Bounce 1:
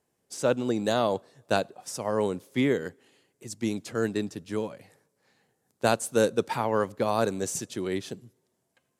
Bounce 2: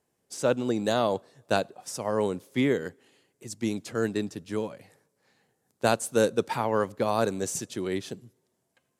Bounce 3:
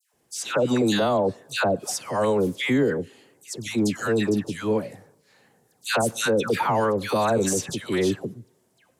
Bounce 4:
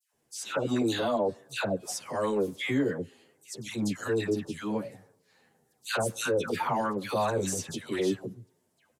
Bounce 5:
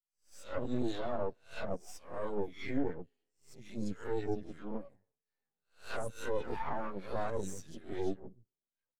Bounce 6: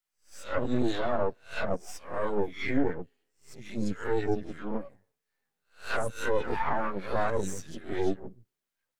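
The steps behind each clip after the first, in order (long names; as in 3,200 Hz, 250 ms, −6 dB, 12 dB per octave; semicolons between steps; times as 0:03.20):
no processing that can be heard
all-pass dispersion lows, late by 139 ms, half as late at 1,400 Hz; transient designer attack −5 dB, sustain 0 dB; brickwall limiter −22.5 dBFS, peak gain reduction 9 dB; level +9 dB
barber-pole flanger 9.6 ms −0.91 Hz; level −3.5 dB
peak hold with a rise ahead of every peak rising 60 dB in 0.46 s; half-wave rectification; every bin expanded away from the loudest bin 1.5 to 1; level −4 dB
parametric band 1,700 Hz +5 dB 1.4 octaves; level +6.5 dB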